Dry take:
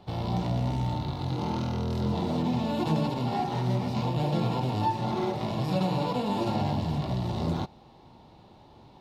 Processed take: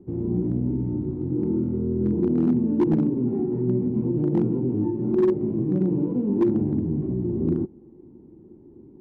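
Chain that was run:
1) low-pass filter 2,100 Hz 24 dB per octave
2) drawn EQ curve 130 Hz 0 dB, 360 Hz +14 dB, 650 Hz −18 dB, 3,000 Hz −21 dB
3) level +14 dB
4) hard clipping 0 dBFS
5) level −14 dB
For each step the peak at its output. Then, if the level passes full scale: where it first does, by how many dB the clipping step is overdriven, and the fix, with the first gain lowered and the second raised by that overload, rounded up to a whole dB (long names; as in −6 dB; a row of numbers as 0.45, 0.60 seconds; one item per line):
−15.5, −8.0, +6.0, 0.0, −14.0 dBFS
step 3, 6.0 dB
step 3 +8 dB, step 5 −8 dB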